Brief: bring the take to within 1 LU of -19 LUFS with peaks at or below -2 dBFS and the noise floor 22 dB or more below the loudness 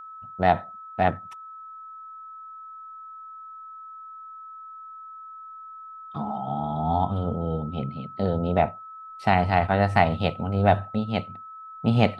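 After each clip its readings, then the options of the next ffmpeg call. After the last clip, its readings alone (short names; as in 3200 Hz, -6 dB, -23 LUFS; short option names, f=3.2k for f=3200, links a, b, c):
steady tone 1300 Hz; tone level -39 dBFS; loudness -25.0 LUFS; peak -3.0 dBFS; loudness target -19.0 LUFS
-> -af "bandreject=f=1.3k:w=30"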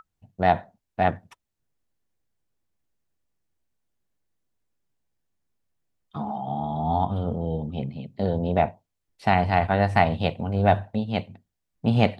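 steady tone none; loudness -25.0 LUFS; peak -3.5 dBFS; loudness target -19.0 LUFS
-> -af "volume=6dB,alimiter=limit=-2dB:level=0:latency=1"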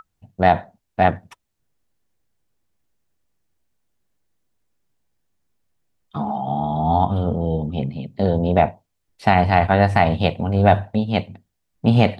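loudness -19.5 LUFS; peak -2.0 dBFS; noise floor -75 dBFS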